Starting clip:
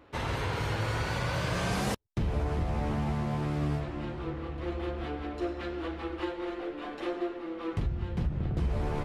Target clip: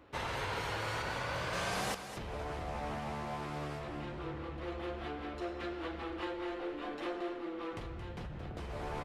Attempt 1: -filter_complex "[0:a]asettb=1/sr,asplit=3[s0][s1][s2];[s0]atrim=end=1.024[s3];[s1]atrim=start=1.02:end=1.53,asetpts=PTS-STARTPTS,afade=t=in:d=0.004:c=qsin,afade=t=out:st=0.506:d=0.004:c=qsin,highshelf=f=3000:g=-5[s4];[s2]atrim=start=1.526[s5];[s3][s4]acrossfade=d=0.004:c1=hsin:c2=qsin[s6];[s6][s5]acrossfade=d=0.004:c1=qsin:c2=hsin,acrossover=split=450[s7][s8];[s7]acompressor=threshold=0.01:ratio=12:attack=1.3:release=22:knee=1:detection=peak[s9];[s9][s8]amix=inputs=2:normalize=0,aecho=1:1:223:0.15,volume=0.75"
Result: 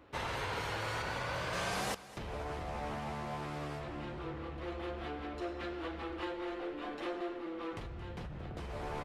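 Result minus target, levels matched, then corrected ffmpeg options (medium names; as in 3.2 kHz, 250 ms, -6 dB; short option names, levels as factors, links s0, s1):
echo-to-direct -7 dB
-filter_complex "[0:a]asettb=1/sr,asplit=3[s0][s1][s2];[s0]atrim=end=1.024[s3];[s1]atrim=start=1.02:end=1.53,asetpts=PTS-STARTPTS,afade=t=in:d=0.004:c=qsin,afade=t=out:st=0.506:d=0.004:c=qsin,highshelf=f=3000:g=-5[s4];[s2]atrim=start=1.526[s5];[s3][s4]acrossfade=d=0.004:c1=hsin:c2=qsin[s6];[s6][s5]acrossfade=d=0.004:c1=qsin:c2=hsin,acrossover=split=450[s7][s8];[s7]acompressor=threshold=0.01:ratio=12:attack=1.3:release=22:knee=1:detection=peak[s9];[s9][s8]amix=inputs=2:normalize=0,aecho=1:1:223:0.335,volume=0.75"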